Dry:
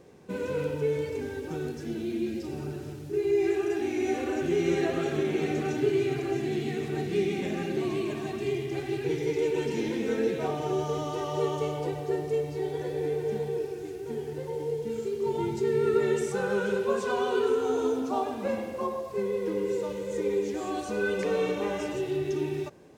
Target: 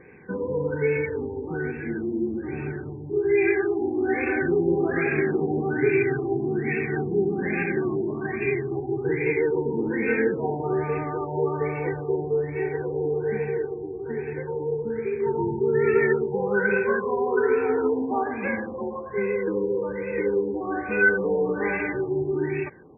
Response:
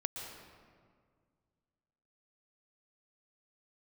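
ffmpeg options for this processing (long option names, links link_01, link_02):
-af "superequalizer=8b=0.447:11b=3.55:12b=3.98,afftfilt=real='re*lt(b*sr/1024,1000*pow(2700/1000,0.5+0.5*sin(2*PI*1.2*pts/sr)))':imag='im*lt(b*sr/1024,1000*pow(2700/1000,0.5+0.5*sin(2*PI*1.2*pts/sr)))':win_size=1024:overlap=0.75,volume=4dB"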